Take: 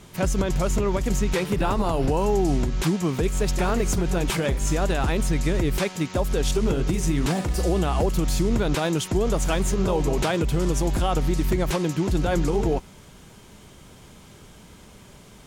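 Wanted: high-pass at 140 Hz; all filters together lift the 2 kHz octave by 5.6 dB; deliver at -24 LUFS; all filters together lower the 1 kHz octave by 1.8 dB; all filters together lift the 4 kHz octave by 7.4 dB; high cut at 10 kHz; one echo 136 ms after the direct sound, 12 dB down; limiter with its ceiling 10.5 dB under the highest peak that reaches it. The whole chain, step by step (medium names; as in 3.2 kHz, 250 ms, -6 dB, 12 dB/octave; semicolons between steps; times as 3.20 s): high-pass 140 Hz; low-pass 10 kHz; peaking EQ 1 kHz -4.5 dB; peaking EQ 2 kHz +6.5 dB; peaking EQ 4 kHz +7.5 dB; peak limiter -19 dBFS; delay 136 ms -12 dB; trim +4 dB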